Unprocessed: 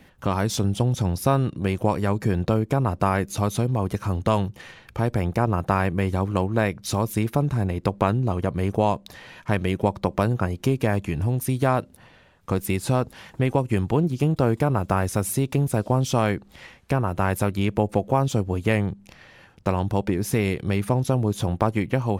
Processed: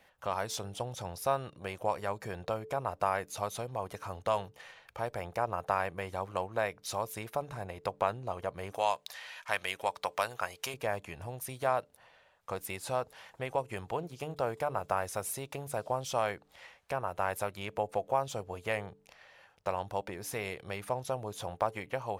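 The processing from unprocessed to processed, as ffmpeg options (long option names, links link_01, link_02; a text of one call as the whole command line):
ffmpeg -i in.wav -filter_complex "[0:a]asettb=1/sr,asplit=3[link_01][link_02][link_03];[link_01]atrim=end=8.724[link_04];[link_02]atrim=start=8.72:end=10.74,asetpts=PTS-STARTPTS,afade=type=in:duration=0.004:curve=qsin,afade=type=out:start_time=2.016:duration=0.004:curve=qsin,tiltshelf=frequency=800:gain=-9[link_05];[link_03]atrim=start=10.736[link_06];[link_04][link_05]acrossfade=duration=0.004:curve1=hsin:curve2=qsin[link_07];[link_07][link_06]acrossfade=duration=0.004:curve1=qsin:curve2=hsin,lowshelf=frequency=410:width_type=q:width=1.5:gain=-11.5,bandreject=frequency=146.2:width_type=h:width=4,bandreject=frequency=292.4:width_type=h:width=4,bandreject=frequency=438.6:width_type=h:width=4,volume=-8.5dB" out.wav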